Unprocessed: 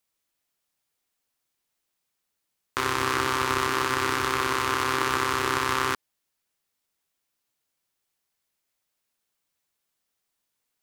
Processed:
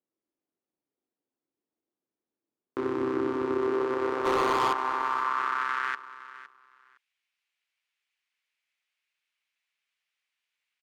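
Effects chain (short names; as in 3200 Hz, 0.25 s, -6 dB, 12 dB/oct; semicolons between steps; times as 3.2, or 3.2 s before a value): band-pass sweep 320 Hz -> 2400 Hz, 3.4–6.5; limiter -25 dBFS, peak gain reduction 9.5 dB; 4.25–4.73 sample leveller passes 3; feedback echo 0.512 s, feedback 19%, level -16 dB; gain +7 dB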